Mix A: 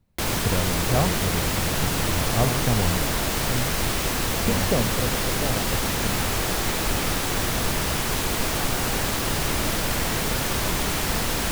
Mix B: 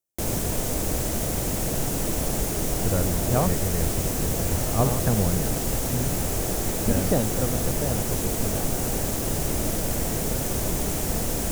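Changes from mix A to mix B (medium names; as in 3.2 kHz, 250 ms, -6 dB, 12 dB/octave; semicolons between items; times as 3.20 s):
speech: entry +2.40 s; background: add high-order bell 2.1 kHz -10.5 dB 2.7 oct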